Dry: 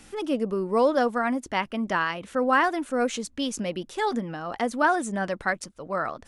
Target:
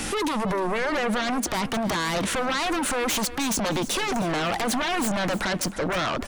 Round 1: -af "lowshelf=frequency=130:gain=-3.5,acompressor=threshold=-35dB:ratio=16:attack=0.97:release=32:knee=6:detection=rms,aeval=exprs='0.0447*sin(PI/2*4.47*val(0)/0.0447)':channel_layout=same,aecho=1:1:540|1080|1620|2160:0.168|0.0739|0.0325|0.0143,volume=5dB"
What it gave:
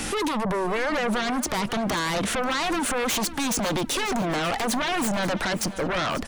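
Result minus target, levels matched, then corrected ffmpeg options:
echo 230 ms late
-af "lowshelf=frequency=130:gain=-3.5,acompressor=threshold=-35dB:ratio=16:attack=0.97:release=32:knee=6:detection=rms,aeval=exprs='0.0447*sin(PI/2*4.47*val(0)/0.0447)':channel_layout=same,aecho=1:1:310|620|930|1240:0.168|0.0739|0.0325|0.0143,volume=5dB"

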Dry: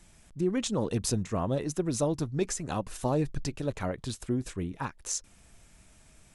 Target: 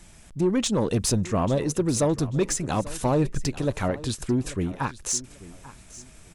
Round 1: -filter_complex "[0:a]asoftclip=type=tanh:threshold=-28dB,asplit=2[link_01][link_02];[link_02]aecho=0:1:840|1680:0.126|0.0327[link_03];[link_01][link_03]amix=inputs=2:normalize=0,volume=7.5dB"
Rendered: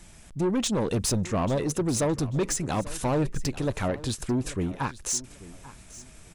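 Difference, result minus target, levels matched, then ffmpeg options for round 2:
soft clipping: distortion +7 dB
-filter_complex "[0:a]asoftclip=type=tanh:threshold=-22dB,asplit=2[link_01][link_02];[link_02]aecho=0:1:840|1680:0.126|0.0327[link_03];[link_01][link_03]amix=inputs=2:normalize=0,volume=7.5dB"

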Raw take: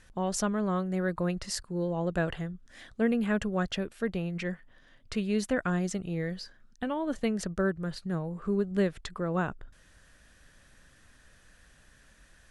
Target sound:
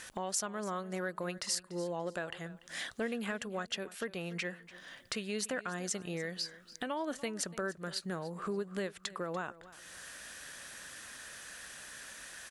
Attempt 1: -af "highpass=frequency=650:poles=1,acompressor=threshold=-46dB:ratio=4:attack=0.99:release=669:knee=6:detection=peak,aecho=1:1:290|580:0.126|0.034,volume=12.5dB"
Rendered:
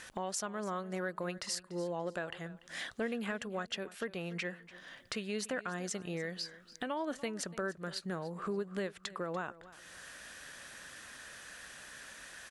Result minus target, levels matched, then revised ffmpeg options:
8,000 Hz band −3.0 dB
-af "highpass=frequency=650:poles=1,acompressor=threshold=-46dB:ratio=4:attack=0.99:release=669:knee=6:detection=peak,highshelf=frequency=5600:gain=6.5,aecho=1:1:290|580:0.126|0.034,volume=12.5dB"

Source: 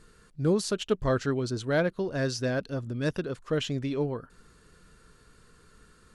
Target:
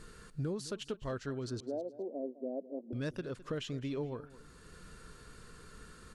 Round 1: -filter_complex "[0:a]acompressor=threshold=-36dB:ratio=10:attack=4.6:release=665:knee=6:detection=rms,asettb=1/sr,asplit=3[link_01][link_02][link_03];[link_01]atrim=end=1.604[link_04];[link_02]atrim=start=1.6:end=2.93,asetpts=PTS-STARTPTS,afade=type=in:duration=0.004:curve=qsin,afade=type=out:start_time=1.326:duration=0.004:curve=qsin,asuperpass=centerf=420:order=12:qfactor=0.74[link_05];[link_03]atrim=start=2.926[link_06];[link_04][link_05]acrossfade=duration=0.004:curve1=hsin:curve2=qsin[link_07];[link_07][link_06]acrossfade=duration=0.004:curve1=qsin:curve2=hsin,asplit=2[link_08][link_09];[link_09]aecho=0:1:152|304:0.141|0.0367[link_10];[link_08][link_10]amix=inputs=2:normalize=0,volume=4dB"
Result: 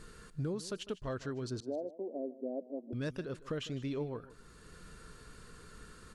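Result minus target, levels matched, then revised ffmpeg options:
echo 58 ms early
-filter_complex "[0:a]acompressor=threshold=-36dB:ratio=10:attack=4.6:release=665:knee=6:detection=rms,asettb=1/sr,asplit=3[link_01][link_02][link_03];[link_01]atrim=end=1.604[link_04];[link_02]atrim=start=1.6:end=2.93,asetpts=PTS-STARTPTS,afade=type=in:duration=0.004:curve=qsin,afade=type=out:start_time=1.326:duration=0.004:curve=qsin,asuperpass=centerf=420:order=12:qfactor=0.74[link_05];[link_03]atrim=start=2.926[link_06];[link_04][link_05]acrossfade=duration=0.004:curve1=hsin:curve2=qsin[link_07];[link_07][link_06]acrossfade=duration=0.004:curve1=qsin:curve2=hsin,asplit=2[link_08][link_09];[link_09]aecho=0:1:210|420:0.141|0.0367[link_10];[link_08][link_10]amix=inputs=2:normalize=0,volume=4dB"

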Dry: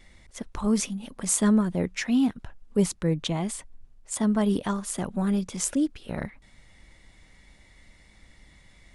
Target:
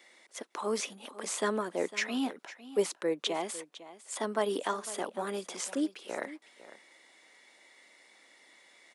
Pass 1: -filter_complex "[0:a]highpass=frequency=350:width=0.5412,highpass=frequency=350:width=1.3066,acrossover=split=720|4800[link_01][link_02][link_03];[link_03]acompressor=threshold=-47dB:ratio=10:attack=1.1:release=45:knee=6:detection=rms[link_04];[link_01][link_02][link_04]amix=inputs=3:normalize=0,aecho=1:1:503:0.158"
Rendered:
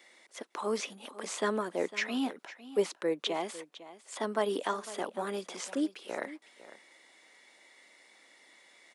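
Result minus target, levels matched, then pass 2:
downward compressor: peak gain reduction +10 dB
-filter_complex "[0:a]highpass=frequency=350:width=0.5412,highpass=frequency=350:width=1.3066,acrossover=split=720|4800[link_01][link_02][link_03];[link_03]acompressor=threshold=-36dB:ratio=10:attack=1.1:release=45:knee=6:detection=rms[link_04];[link_01][link_02][link_04]amix=inputs=3:normalize=0,aecho=1:1:503:0.158"

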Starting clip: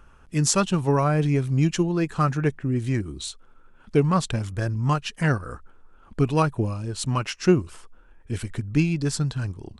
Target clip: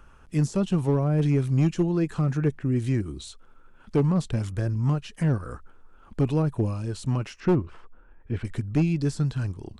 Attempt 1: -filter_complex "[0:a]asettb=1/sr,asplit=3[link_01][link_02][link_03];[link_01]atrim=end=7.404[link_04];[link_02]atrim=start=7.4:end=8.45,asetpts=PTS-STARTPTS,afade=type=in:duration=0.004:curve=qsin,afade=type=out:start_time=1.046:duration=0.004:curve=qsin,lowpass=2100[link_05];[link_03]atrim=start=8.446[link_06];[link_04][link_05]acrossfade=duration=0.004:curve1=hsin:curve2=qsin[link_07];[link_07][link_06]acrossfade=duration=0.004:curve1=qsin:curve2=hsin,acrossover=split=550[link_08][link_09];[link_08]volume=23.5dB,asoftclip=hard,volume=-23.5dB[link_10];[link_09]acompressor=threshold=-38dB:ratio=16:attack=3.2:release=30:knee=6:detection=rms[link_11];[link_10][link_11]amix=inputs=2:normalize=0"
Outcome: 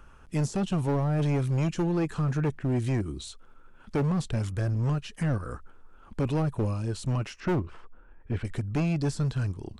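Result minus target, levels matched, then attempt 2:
gain into a clipping stage and back: distortion +9 dB
-filter_complex "[0:a]asettb=1/sr,asplit=3[link_01][link_02][link_03];[link_01]atrim=end=7.404[link_04];[link_02]atrim=start=7.4:end=8.45,asetpts=PTS-STARTPTS,afade=type=in:duration=0.004:curve=qsin,afade=type=out:start_time=1.046:duration=0.004:curve=qsin,lowpass=2100[link_05];[link_03]atrim=start=8.446[link_06];[link_04][link_05]acrossfade=duration=0.004:curve1=hsin:curve2=qsin[link_07];[link_07][link_06]acrossfade=duration=0.004:curve1=qsin:curve2=hsin,acrossover=split=550[link_08][link_09];[link_08]volume=16dB,asoftclip=hard,volume=-16dB[link_10];[link_09]acompressor=threshold=-38dB:ratio=16:attack=3.2:release=30:knee=6:detection=rms[link_11];[link_10][link_11]amix=inputs=2:normalize=0"

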